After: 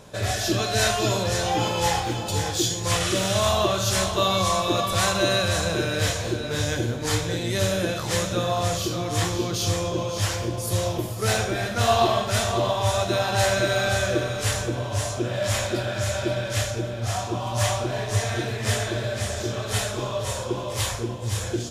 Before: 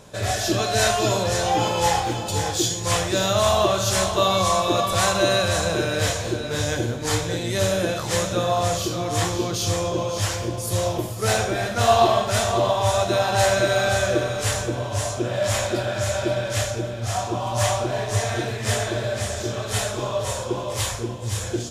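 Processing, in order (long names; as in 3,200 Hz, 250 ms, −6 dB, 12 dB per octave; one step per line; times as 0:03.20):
parametric band 7,600 Hz −2.5 dB
healed spectral selection 0:03.03–0:03.38, 1,100–12,000 Hz
dynamic equaliser 720 Hz, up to −4 dB, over −30 dBFS, Q 0.83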